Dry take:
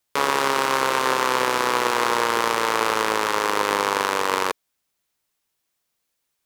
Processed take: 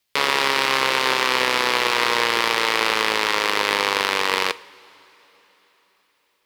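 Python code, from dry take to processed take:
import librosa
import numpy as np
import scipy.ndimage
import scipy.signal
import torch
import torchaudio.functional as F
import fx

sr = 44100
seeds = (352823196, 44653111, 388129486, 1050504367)

y = fx.band_shelf(x, sr, hz=3100.0, db=8.5, octaves=1.7)
y = fx.quant_dither(y, sr, seeds[0], bits=12, dither='none')
y = fx.rev_double_slope(y, sr, seeds[1], early_s=0.42, late_s=4.3, knee_db=-18, drr_db=15.0)
y = y * 10.0 ** (-1.5 / 20.0)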